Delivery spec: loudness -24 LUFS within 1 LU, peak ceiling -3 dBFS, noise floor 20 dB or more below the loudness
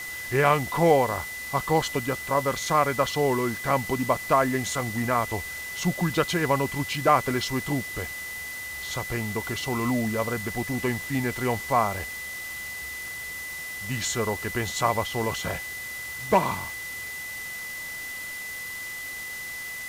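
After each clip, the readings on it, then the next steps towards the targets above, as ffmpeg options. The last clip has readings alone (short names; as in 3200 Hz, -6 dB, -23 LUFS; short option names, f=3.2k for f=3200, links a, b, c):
steady tone 2000 Hz; tone level -34 dBFS; noise floor -36 dBFS; noise floor target -47 dBFS; loudness -27.0 LUFS; peak -7.0 dBFS; loudness target -24.0 LUFS
-> -af "bandreject=f=2k:w=30"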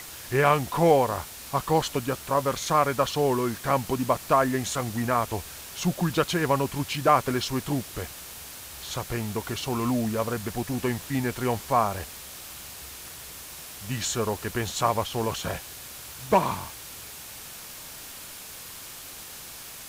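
steady tone none; noise floor -42 dBFS; noise floor target -47 dBFS
-> -af "afftdn=nr=6:nf=-42"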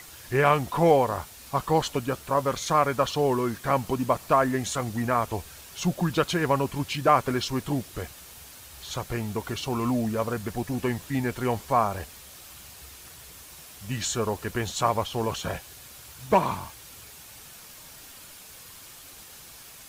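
noise floor -47 dBFS; loudness -26.5 LUFS; peak -7.0 dBFS; loudness target -24.0 LUFS
-> -af "volume=2.5dB"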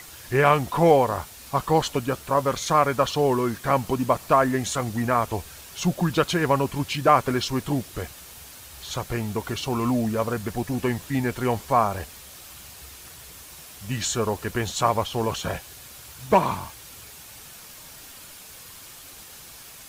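loudness -24.0 LUFS; peak -4.5 dBFS; noise floor -44 dBFS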